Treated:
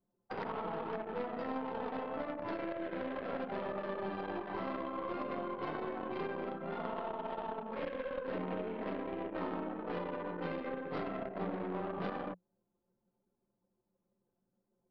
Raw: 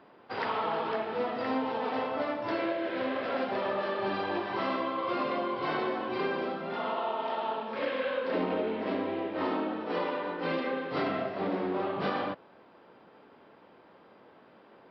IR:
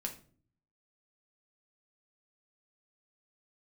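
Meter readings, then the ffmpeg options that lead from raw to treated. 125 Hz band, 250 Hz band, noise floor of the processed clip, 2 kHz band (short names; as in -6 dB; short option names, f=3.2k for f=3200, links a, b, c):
-2.5 dB, -6.5 dB, -84 dBFS, -10.0 dB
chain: -filter_complex "[0:a]acrossover=split=200|440|1000[a][b][c][d];[a]acompressor=threshold=-53dB:ratio=4[e];[b]acompressor=threshold=-42dB:ratio=4[f];[c]acompressor=threshold=-42dB:ratio=4[g];[d]acompressor=threshold=-45dB:ratio=4[h];[e][f][g][h]amix=inputs=4:normalize=0,aeval=exprs='0.106*(cos(1*acos(clip(val(0)/0.106,-1,1)))-cos(1*PI/2))+0.0168*(cos(3*acos(clip(val(0)/0.106,-1,1)))-cos(3*PI/2))+0.00944*(cos(6*acos(clip(val(0)/0.106,-1,1)))-cos(6*PI/2))+0.00376*(cos(8*acos(clip(val(0)/0.106,-1,1)))-cos(8*PI/2))':c=same,anlmdn=0.0631,equalizer=f=180:w=7.1:g=9.5,volume=3.5dB"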